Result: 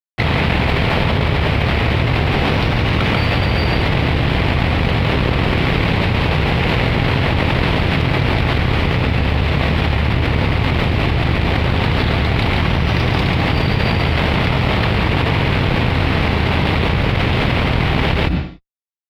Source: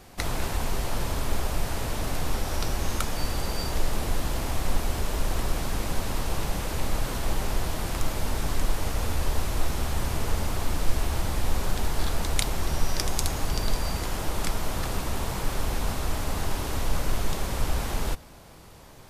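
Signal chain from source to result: octave divider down 1 oct, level +2 dB; high-pass 71 Hz 12 dB/octave; high-order bell 3.2 kHz +12 dB; fuzz box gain 22 dB, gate -31 dBFS; distance through air 480 m; delay 140 ms -5.5 dB; on a send at -20 dB: reverberation RT60 0.55 s, pre-delay 3 ms; on the sum: level flattener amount 100%; trim +3 dB

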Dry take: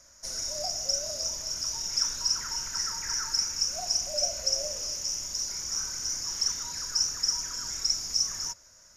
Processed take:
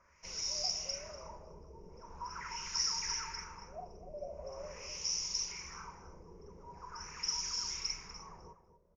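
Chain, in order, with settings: rippled EQ curve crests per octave 0.79, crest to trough 11 dB; LFO low-pass sine 0.43 Hz 450–4200 Hz; echo from a far wall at 42 m, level -12 dB; trim -6 dB

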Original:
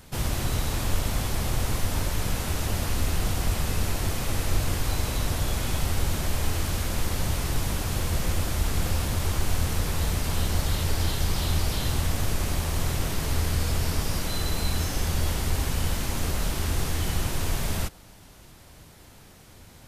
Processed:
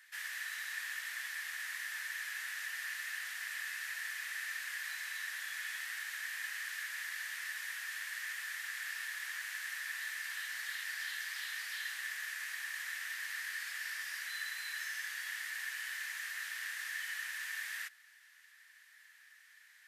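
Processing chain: ladder high-pass 1.7 kHz, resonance 85%

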